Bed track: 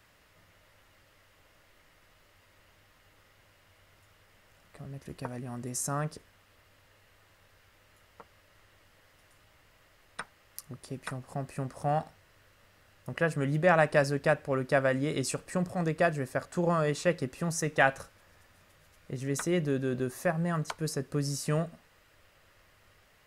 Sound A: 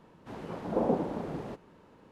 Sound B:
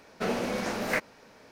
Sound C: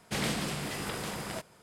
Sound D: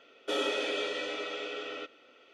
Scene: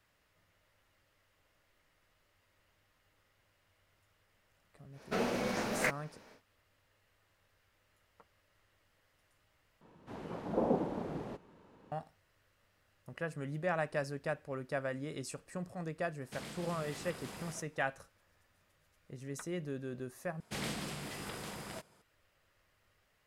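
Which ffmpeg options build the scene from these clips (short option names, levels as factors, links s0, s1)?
-filter_complex "[3:a]asplit=2[s0][s1];[0:a]volume=0.282[s2];[s0]alimiter=level_in=1.5:limit=0.0631:level=0:latency=1:release=407,volume=0.668[s3];[s2]asplit=3[s4][s5][s6];[s4]atrim=end=9.814[s7];[1:a]atrim=end=2.11,asetpts=PTS-STARTPTS,volume=0.668[s8];[s5]atrim=start=11.916:end=20.404[s9];[s1]atrim=end=1.62,asetpts=PTS-STARTPTS,volume=0.422[s10];[s6]atrim=start=22.016[s11];[2:a]atrim=end=1.51,asetpts=PTS-STARTPTS,volume=0.631,afade=t=in:d=0.1,afade=t=out:st=1.41:d=0.1,adelay=4910[s12];[s3]atrim=end=1.62,asetpts=PTS-STARTPTS,volume=0.355,afade=t=in:d=0.004:c=hsin,afade=t=out:st=1.616:d=0.004:c=hsin,adelay=16210[s13];[s7][s8]acrossfade=d=0.004:c1=hsin:c2=hsin[s14];[s14][s9]acrossfade=d=0.004:c1=hsin:c2=hsin[s15];[s15][s10]acrossfade=d=0.004:c1=hsin:c2=hsin[s16];[s16][s11]acrossfade=d=0.004:c1=hsin:c2=hsin[s17];[s17][s12][s13]amix=inputs=3:normalize=0"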